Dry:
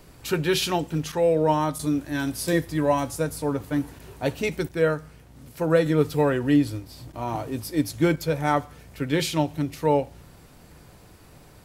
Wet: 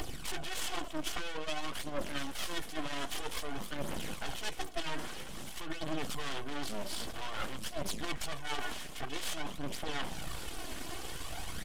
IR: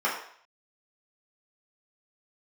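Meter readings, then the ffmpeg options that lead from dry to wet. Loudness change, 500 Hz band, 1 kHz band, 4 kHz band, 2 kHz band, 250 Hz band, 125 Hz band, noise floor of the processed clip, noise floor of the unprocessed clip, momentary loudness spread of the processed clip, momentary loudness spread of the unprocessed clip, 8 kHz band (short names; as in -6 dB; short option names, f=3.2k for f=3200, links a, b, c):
-14.5 dB, -19.0 dB, -12.5 dB, -4.5 dB, -8.0 dB, -18.5 dB, -19.0 dB, -42 dBFS, -51 dBFS, 4 LU, 9 LU, -5.5 dB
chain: -af "aeval=exprs='(tanh(39.8*val(0)+0.25)-tanh(0.25))/39.8':c=same,highshelf=f=6k:g=5,bandreject=f=490:w=12,aecho=1:1:2.7:0.96,aphaser=in_gain=1:out_gain=1:delay=3.3:decay=0.6:speed=0.51:type=triangular,bandreject=f=60:t=h:w=6,bandreject=f=120:t=h:w=6,bandreject=f=180:t=h:w=6,bandreject=f=240:t=h:w=6,bandreject=f=300:t=h:w=6,bandreject=f=360:t=h:w=6,aeval=exprs='0.178*(cos(1*acos(clip(val(0)/0.178,-1,1)))-cos(1*PI/2))+0.0316*(cos(4*acos(clip(val(0)/0.178,-1,1)))-cos(4*PI/2))+0.0355*(cos(6*acos(clip(val(0)/0.178,-1,1)))-cos(6*PI/2))':c=same,areverse,acompressor=threshold=-40dB:ratio=5,areverse,aeval=exprs='abs(val(0))':c=same,aresample=32000,aresample=44100,acompressor=mode=upward:threshold=-46dB:ratio=2.5,equalizer=f=100:t=o:w=0.33:g=-10,equalizer=f=400:t=o:w=0.33:g=-5,equalizer=f=3.15k:t=o:w=0.33:g=7,equalizer=f=12.5k:t=o:w=0.33:g=-9,volume=8dB"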